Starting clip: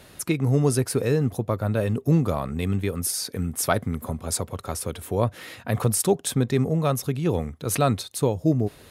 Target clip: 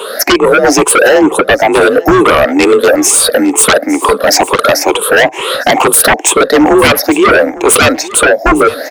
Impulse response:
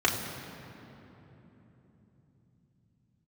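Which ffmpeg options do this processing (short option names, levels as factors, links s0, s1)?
-filter_complex "[0:a]afftfilt=real='re*pow(10,20/40*sin(2*PI*(0.66*log(max(b,1)*sr/1024/100)/log(2)-(2.2)*(pts-256)/sr)))':imag='im*pow(10,20/40*sin(2*PI*(0.66*log(max(b,1)*sr/1024/100)/log(2)-(2.2)*(pts-256)/sr)))':win_size=1024:overlap=0.75,highpass=f=350:w=0.5412,highpass=f=350:w=1.3066,highshelf=f=2100:g=-11.5,asplit=2[s0][s1];[s1]acompressor=threshold=0.0316:ratio=5,volume=1.12[s2];[s0][s2]amix=inputs=2:normalize=0,alimiter=limit=0.299:level=0:latency=1:release=312,acontrast=59,afreqshift=42,aeval=exprs='0.668*sin(PI/2*3.98*val(0)/0.668)':c=same,asplit=2[s3][s4];[s4]aecho=0:1:856:0.126[s5];[s3][s5]amix=inputs=2:normalize=0,volume=1.12"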